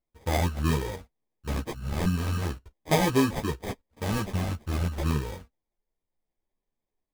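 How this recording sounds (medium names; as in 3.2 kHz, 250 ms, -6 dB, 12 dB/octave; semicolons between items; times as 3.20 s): phasing stages 2, 0.38 Hz, lowest notch 460–3400 Hz; aliases and images of a low sample rate 1.4 kHz, jitter 0%; a shimmering, thickened sound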